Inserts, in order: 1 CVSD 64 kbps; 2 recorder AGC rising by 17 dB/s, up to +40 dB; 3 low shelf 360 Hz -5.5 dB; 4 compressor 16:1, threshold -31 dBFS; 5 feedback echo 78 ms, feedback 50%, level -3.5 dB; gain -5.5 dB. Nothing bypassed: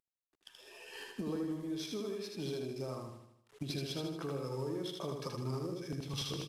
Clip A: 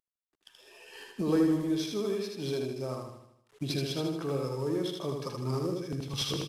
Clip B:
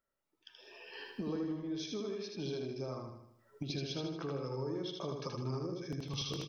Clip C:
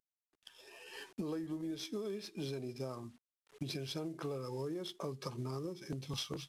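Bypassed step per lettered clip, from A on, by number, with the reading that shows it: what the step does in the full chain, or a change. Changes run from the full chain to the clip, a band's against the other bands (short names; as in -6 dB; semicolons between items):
4, mean gain reduction 5.0 dB; 1, 8 kHz band -1.5 dB; 5, echo-to-direct -2.5 dB to none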